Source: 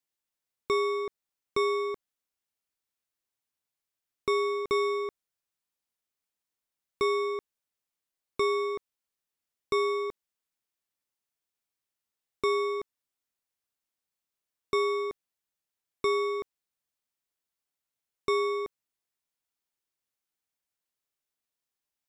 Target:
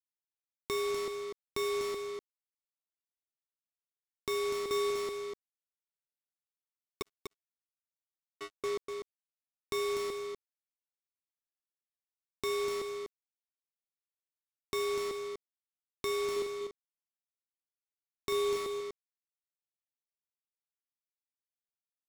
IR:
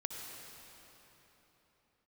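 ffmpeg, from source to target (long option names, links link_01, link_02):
-filter_complex "[0:a]asettb=1/sr,asplit=3[link_01][link_02][link_03];[link_01]atrim=end=7.024[link_04];[link_02]atrim=start=7.02:end=8.64,asetpts=PTS-STARTPTS,afade=type=in:duration=0.004:curve=qsin,afade=type=out:start_time=1.616:duration=0.004:curve=qsin,agate=range=-57dB:threshold=-22dB:ratio=16:detection=peak[link_05];[link_03]atrim=start=8.636[link_06];[link_04][link_05]acrossfade=duration=0.004:curve1=hsin:curve2=qsin[link_07];[link_07][link_06]acrossfade=duration=0.004:curve1=qsin:curve2=hsin,adynamicequalizer=threshold=0.0112:dfrequency=400:dqfactor=1.1:tfrequency=400:tqfactor=1.1:attack=5:release=100:ratio=0.375:range=2:mode=boostabove:tftype=bell,acrossover=split=2800[link_08][link_09];[link_08]alimiter=level_in=1dB:limit=-24dB:level=0:latency=1:release=334,volume=-1dB[link_10];[link_10][link_09]amix=inputs=2:normalize=0,acompressor=mode=upward:threshold=-36dB:ratio=2.5,acrusher=bits=5:mix=0:aa=0.5,asettb=1/sr,asplit=3[link_11][link_12][link_13];[link_11]atrim=end=16.324[link_14];[link_12]atrim=start=16.32:end=18.56,asetpts=PTS-STARTPTS,afade=type=in:duration=0.004:curve=qsin,afade=type=out:start_time=2.236:duration=0.004:curve=qsin,asplit=2[link_15][link_16];[link_16]adelay=42,volume=-6.5dB[link_17];[link_15][link_17]amix=inputs=2:normalize=0,atrim=end_sample=98784[link_18];[link_13]atrim=start=18.556[link_19];[link_14][link_18]acrossfade=duration=0.004:curve1=hsin:curve2=qsin[link_20];[link_20][link_19]acrossfade=duration=0.004:curve1=qsin:curve2=hsin,aecho=1:1:246:0.501,volume=-2dB"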